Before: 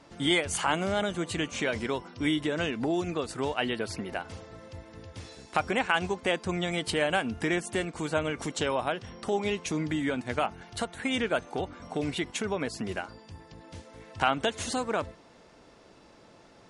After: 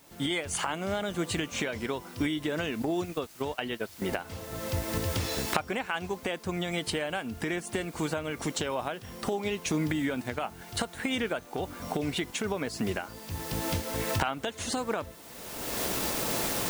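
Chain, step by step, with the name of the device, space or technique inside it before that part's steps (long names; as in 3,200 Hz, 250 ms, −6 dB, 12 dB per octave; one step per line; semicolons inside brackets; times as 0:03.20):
0:02.82–0:04.02: noise gate −30 dBFS, range −22 dB
cheap recorder with automatic gain (white noise bed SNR 23 dB; camcorder AGC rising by 31 dB per second)
level −6.5 dB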